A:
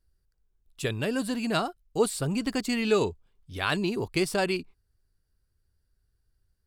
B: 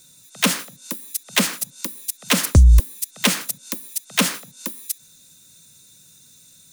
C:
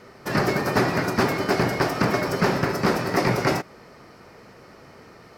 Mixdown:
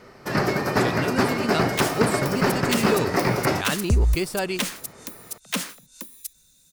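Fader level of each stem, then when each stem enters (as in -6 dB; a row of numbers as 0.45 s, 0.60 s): 0.0 dB, -8.5 dB, -0.5 dB; 0.00 s, 1.35 s, 0.00 s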